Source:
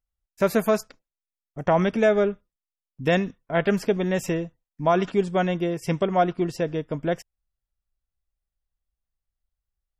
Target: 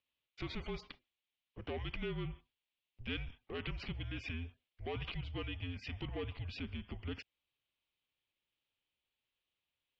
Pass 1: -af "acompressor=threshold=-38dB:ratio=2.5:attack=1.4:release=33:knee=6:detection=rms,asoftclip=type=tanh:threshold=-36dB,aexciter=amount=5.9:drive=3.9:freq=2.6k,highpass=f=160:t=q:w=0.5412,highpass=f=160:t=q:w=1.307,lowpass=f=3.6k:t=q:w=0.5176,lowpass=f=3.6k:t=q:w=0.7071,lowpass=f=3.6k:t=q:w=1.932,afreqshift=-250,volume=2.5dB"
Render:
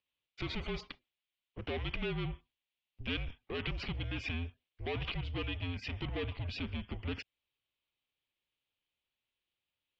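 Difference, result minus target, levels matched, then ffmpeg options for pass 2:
compressor: peak gain reduction -7 dB
-af "acompressor=threshold=-49.5dB:ratio=2.5:attack=1.4:release=33:knee=6:detection=rms,asoftclip=type=tanh:threshold=-36dB,aexciter=amount=5.9:drive=3.9:freq=2.6k,highpass=f=160:t=q:w=0.5412,highpass=f=160:t=q:w=1.307,lowpass=f=3.6k:t=q:w=0.5176,lowpass=f=3.6k:t=q:w=0.7071,lowpass=f=3.6k:t=q:w=1.932,afreqshift=-250,volume=2.5dB"

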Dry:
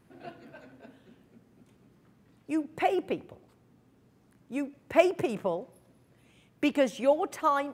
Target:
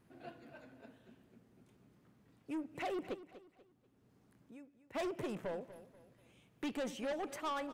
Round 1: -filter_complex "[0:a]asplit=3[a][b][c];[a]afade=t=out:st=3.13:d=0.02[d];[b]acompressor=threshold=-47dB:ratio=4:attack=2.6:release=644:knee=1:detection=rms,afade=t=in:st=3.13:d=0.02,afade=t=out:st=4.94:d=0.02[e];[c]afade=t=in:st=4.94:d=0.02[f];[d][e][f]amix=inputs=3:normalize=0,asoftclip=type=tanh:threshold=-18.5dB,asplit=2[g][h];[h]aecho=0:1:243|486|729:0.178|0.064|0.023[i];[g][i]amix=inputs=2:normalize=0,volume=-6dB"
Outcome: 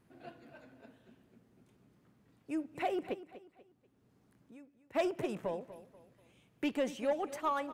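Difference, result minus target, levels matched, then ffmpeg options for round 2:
soft clip: distortion -7 dB
-filter_complex "[0:a]asplit=3[a][b][c];[a]afade=t=out:st=3.13:d=0.02[d];[b]acompressor=threshold=-47dB:ratio=4:attack=2.6:release=644:knee=1:detection=rms,afade=t=in:st=3.13:d=0.02,afade=t=out:st=4.94:d=0.02[e];[c]afade=t=in:st=4.94:d=0.02[f];[d][e][f]amix=inputs=3:normalize=0,asoftclip=type=tanh:threshold=-29dB,asplit=2[g][h];[h]aecho=0:1:243|486|729:0.178|0.064|0.023[i];[g][i]amix=inputs=2:normalize=0,volume=-6dB"

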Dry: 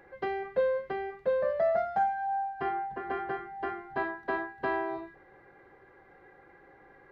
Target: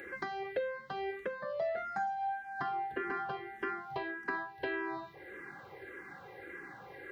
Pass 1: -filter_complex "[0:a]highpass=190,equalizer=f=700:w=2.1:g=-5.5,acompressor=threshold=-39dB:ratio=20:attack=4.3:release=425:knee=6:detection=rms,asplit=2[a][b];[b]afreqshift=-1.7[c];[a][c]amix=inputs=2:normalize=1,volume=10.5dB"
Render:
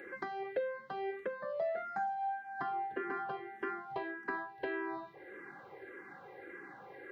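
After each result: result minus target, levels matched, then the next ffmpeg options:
4000 Hz band -5.0 dB; 125 Hz band -4.5 dB
-filter_complex "[0:a]highpass=190,equalizer=f=700:w=2.1:g=-5.5,acompressor=threshold=-39dB:ratio=20:attack=4.3:release=425:knee=6:detection=rms,highshelf=f=2.4k:g=9.5,asplit=2[a][b];[b]afreqshift=-1.7[c];[a][c]amix=inputs=2:normalize=1,volume=10.5dB"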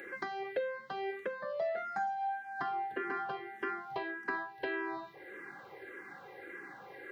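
125 Hz band -5.5 dB
-filter_complex "[0:a]highpass=89,equalizer=f=700:w=2.1:g=-5.5,acompressor=threshold=-39dB:ratio=20:attack=4.3:release=425:knee=6:detection=rms,highshelf=f=2.4k:g=9.5,asplit=2[a][b];[b]afreqshift=-1.7[c];[a][c]amix=inputs=2:normalize=1,volume=10.5dB"

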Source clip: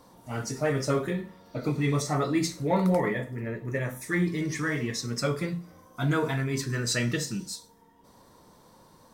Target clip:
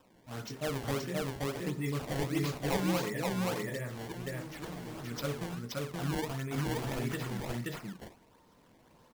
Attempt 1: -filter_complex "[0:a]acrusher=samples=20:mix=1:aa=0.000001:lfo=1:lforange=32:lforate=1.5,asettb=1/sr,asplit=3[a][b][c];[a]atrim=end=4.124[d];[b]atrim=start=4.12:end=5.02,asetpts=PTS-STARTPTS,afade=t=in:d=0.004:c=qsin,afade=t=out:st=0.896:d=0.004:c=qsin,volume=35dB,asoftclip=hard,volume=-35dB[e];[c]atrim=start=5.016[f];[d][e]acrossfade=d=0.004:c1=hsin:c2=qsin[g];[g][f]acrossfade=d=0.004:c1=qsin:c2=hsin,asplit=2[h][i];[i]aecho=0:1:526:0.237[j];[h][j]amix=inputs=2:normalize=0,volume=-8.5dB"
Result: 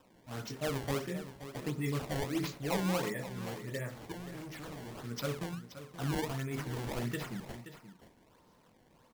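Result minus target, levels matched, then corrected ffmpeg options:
echo-to-direct -11.5 dB
-filter_complex "[0:a]acrusher=samples=20:mix=1:aa=0.000001:lfo=1:lforange=32:lforate=1.5,asettb=1/sr,asplit=3[a][b][c];[a]atrim=end=4.124[d];[b]atrim=start=4.12:end=5.02,asetpts=PTS-STARTPTS,afade=t=in:d=0.004:c=qsin,afade=t=out:st=0.896:d=0.004:c=qsin,volume=35dB,asoftclip=hard,volume=-35dB[e];[c]atrim=start=5.016[f];[d][e]acrossfade=d=0.004:c1=hsin:c2=qsin[g];[g][f]acrossfade=d=0.004:c1=qsin:c2=hsin,asplit=2[h][i];[i]aecho=0:1:526:0.891[j];[h][j]amix=inputs=2:normalize=0,volume=-8.5dB"

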